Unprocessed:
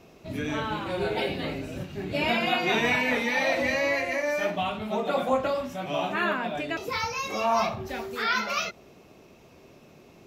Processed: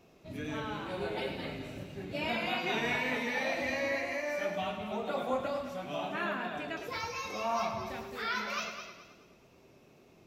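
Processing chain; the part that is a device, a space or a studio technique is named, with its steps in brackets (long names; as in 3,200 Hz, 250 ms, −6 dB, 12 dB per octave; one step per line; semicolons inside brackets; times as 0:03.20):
multi-head tape echo (echo machine with several playback heads 107 ms, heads first and second, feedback 41%, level −10.5 dB; tape wow and flutter 23 cents)
level −8.5 dB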